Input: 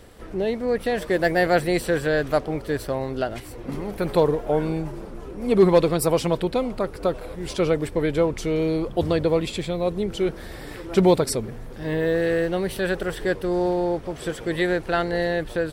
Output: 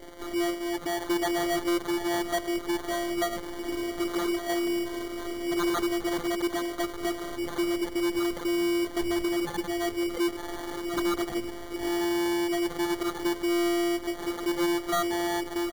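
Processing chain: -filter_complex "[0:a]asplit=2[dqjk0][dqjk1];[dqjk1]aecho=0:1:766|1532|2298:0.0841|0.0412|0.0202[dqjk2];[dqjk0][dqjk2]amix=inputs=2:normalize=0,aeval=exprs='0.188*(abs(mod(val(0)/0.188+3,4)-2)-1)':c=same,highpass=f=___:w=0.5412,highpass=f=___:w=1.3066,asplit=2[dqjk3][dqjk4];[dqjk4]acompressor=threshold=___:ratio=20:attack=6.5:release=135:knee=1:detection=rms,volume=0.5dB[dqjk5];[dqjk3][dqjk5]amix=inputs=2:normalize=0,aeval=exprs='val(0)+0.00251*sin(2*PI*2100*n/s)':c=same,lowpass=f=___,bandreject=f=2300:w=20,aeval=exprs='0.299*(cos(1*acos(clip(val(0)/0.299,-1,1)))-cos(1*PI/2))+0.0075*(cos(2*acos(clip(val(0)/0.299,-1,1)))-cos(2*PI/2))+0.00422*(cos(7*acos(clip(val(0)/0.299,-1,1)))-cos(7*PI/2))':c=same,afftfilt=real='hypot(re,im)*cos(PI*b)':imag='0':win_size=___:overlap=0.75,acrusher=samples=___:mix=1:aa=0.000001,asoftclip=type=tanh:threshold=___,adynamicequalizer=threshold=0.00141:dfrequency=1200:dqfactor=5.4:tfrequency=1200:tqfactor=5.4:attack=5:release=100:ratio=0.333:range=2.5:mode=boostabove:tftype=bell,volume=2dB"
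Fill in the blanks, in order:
54, 54, -35dB, 4400, 512, 17, -24dB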